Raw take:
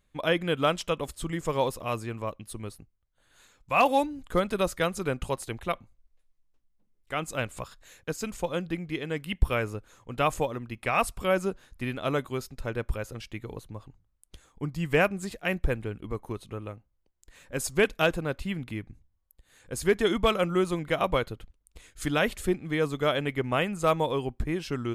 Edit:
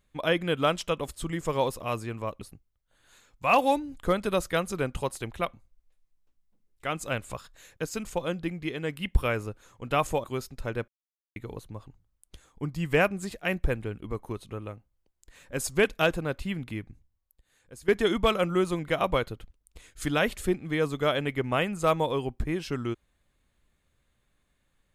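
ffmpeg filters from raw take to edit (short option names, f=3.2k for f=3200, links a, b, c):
-filter_complex "[0:a]asplit=6[a][b][c][d][e][f];[a]atrim=end=2.412[g];[b]atrim=start=2.678:end=10.512[h];[c]atrim=start=12.238:end=12.88,asetpts=PTS-STARTPTS,afade=t=out:st=0.638:d=0.004:c=hsin[i];[d]atrim=start=12.88:end=13.36,asetpts=PTS-STARTPTS,volume=0[j];[e]atrim=start=13.36:end=19.88,asetpts=PTS-STARTPTS,afade=t=in:d=0.004:c=hsin,afade=t=out:st=5.41:d=1.11:silence=0.141254[k];[f]atrim=start=19.88,asetpts=PTS-STARTPTS,afade=t=in:d=0.004:c=hsin:silence=0.141254[l];[g][h]acrossfade=d=0.004:c1=hsin:c2=hsin[m];[i][j][k][l]concat=n=4:v=0:a=1[n];[m][n]acrossfade=d=0.004:c1=hsin:c2=hsin"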